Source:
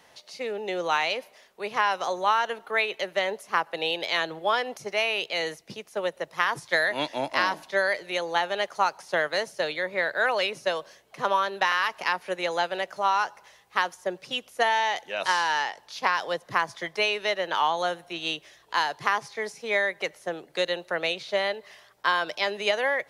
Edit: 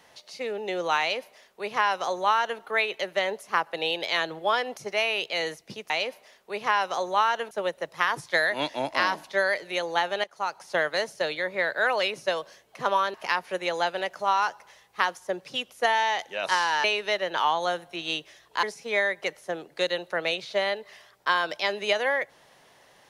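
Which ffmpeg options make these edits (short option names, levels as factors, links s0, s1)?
-filter_complex "[0:a]asplit=7[s0][s1][s2][s3][s4][s5][s6];[s0]atrim=end=5.902[s7];[s1]atrim=start=0.998:end=2.612[s8];[s2]atrim=start=5.898:end=8.63,asetpts=PTS-STARTPTS,afade=t=out:st=2.728:d=0.004:c=hsin:silence=0.149624[s9];[s3]atrim=start=8.63:end=11.532,asetpts=PTS-STARTPTS,afade=t=in:d=0.48:silence=0.149624[s10];[s4]atrim=start=11.908:end=15.612[s11];[s5]atrim=start=17.008:end=18.802[s12];[s6]atrim=start=19.408[s13];[s7][s8]acrossfade=d=0.004:c1=hsin:c2=hsin[s14];[s9][s10]concat=n=2:v=0:a=1[s15];[s14][s15]acrossfade=d=0.004:c1=hsin:c2=hsin[s16];[s16][s11]acrossfade=d=0.004:c1=hsin:c2=hsin[s17];[s17][s12]acrossfade=d=0.004:c1=hsin:c2=hsin[s18];[s18][s13]acrossfade=d=0.004:c1=hsin:c2=hsin"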